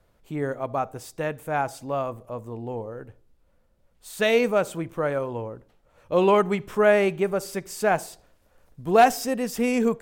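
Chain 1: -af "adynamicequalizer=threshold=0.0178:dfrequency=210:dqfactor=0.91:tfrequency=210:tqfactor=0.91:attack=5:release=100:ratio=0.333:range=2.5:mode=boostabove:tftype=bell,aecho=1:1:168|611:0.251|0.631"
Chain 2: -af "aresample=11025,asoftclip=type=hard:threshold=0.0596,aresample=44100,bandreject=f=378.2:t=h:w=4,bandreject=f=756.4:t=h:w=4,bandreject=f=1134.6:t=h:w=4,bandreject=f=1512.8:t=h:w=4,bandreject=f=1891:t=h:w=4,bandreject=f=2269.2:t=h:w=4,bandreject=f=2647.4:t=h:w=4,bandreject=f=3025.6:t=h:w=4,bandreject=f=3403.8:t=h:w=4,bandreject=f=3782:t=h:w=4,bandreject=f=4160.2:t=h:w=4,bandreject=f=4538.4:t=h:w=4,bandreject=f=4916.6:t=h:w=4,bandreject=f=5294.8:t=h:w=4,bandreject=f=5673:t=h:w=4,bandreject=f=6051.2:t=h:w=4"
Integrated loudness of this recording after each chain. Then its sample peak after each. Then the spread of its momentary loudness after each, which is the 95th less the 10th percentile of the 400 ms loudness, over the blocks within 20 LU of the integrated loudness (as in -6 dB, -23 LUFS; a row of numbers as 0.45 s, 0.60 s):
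-22.0 LUFS, -30.5 LUFS; -4.0 dBFS, -20.0 dBFS; 15 LU, 10 LU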